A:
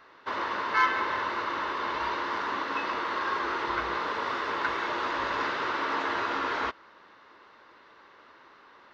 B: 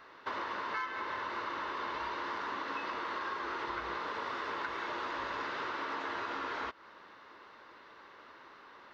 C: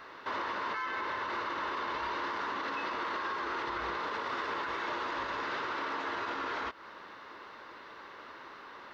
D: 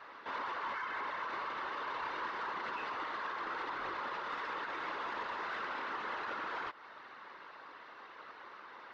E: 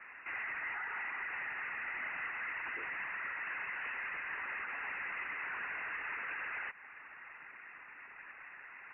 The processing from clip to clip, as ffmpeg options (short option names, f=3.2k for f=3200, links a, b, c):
-af "acompressor=threshold=-35dB:ratio=6"
-af "alimiter=level_in=9dB:limit=-24dB:level=0:latency=1:release=38,volume=-9dB,volume=6dB"
-filter_complex "[0:a]afftfilt=real='hypot(re,im)*cos(2*PI*random(0))':imag='hypot(re,im)*sin(2*PI*random(1))':win_size=512:overlap=0.75,asplit=2[a][b];[b]highpass=f=720:p=1,volume=9dB,asoftclip=type=tanh:threshold=-28dB[c];[a][c]amix=inputs=2:normalize=0,lowpass=f=2.6k:p=1,volume=-6dB"
-af "asoftclip=type=tanh:threshold=-31dB,lowpass=f=2.6k:t=q:w=0.5098,lowpass=f=2.6k:t=q:w=0.6013,lowpass=f=2.6k:t=q:w=0.9,lowpass=f=2.6k:t=q:w=2.563,afreqshift=-3000"